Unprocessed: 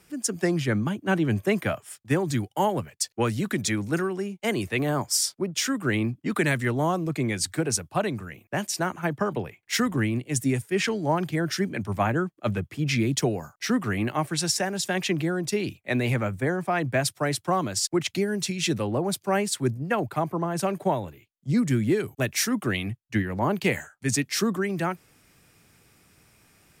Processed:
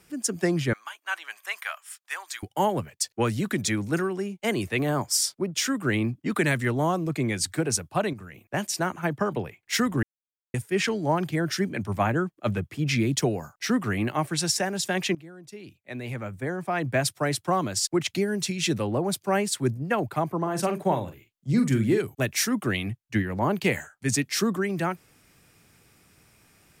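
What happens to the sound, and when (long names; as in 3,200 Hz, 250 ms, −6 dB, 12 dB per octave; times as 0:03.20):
0:00.73–0:02.43: high-pass filter 1,000 Hz 24 dB per octave
0:08.13–0:08.54: downward compressor 4 to 1, threshold −38 dBFS
0:10.03–0:10.54: silence
0:15.15–0:16.97: fade in quadratic, from −19 dB
0:20.39–0:22.01: double-tracking delay 44 ms −8.5 dB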